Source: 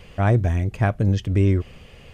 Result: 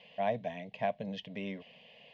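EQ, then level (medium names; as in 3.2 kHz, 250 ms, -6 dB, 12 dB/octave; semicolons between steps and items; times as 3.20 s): cabinet simulation 240–3400 Hz, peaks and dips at 330 Hz -7 dB, 540 Hz -5 dB, 800 Hz -9 dB, 1.5 kHz -9 dB, 2.3 kHz -4 dB; resonant low shelf 510 Hz -8 dB, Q 1.5; static phaser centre 340 Hz, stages 6; 0.0 dB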